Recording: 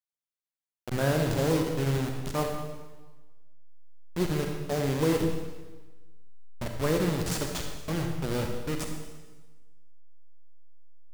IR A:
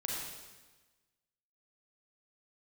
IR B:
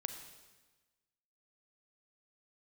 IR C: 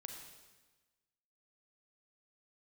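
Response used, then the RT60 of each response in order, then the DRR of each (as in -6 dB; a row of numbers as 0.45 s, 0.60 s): C; 1.2 s, 1.2 s, 1.2 s; -3.0 dB, 7.0 dB, 2.5 dB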